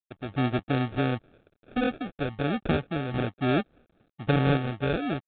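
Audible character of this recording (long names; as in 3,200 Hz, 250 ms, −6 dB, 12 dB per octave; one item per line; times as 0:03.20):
aliases and images of a low sample rate 1,000 Hz, jitter 0%
sample-and-hold tremolo
a quantiser's noise floor 12 bits, dither none
G.726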